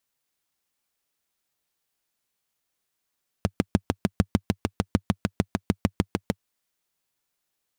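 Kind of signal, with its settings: single-cylinder engine model, steady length 2.94 s, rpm 800, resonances 98/190 Hz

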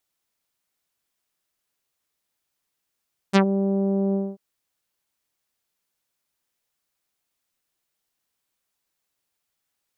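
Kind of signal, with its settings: synth note saw G3 24 dB/octave, low-pass 590 Hz, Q 0.95, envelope 4.5 oct, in 0.11 s, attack 30 ms, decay 0.09 s, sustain -8.5 dB, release 0.23 s, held 0.81 s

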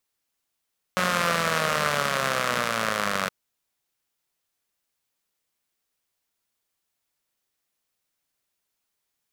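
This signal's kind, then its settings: four-cylinder engine model, changing speed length 2.32 s, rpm 5500, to 2800, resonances 200/570/1200 Hz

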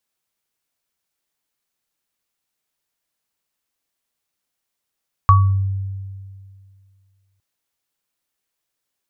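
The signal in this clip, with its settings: sine partials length 2.11 s, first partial 97.1 Hz, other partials 1.13 kHz, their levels 1.5 dB, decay 2.21 s, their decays 0.35 s, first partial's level -8 dB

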